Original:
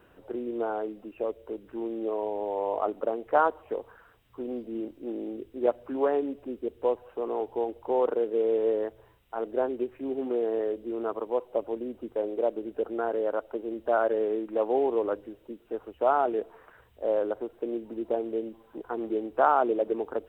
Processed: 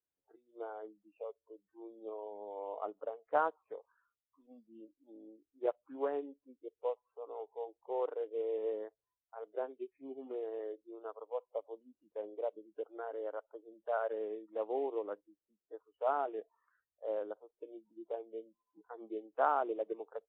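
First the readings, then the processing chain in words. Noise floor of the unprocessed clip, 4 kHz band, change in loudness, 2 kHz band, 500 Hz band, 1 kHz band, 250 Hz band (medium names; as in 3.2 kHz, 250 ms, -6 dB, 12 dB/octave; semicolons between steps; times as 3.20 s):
-60 dBFS, no reading, -10.0 dB, -9.5 dB, -11.0 dB, -9.5 dB, -16.0 dB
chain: spectral noise reduction 24 dB; upward expansion 1.5:1, over -43 dBFS; trim -7.5 dB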